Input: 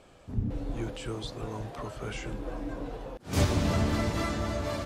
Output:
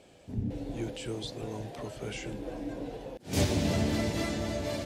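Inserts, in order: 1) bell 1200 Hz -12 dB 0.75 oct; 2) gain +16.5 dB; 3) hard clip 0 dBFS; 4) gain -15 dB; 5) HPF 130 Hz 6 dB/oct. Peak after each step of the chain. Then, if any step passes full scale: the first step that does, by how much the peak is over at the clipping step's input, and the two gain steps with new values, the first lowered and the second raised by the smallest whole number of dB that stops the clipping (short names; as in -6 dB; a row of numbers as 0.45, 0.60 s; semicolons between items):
-13.5, +3.0, 0.0, -15.0, -13.0 dBFS; step 2, 3.0 dB; step 2 +13.5 dB, step 4 -12 dB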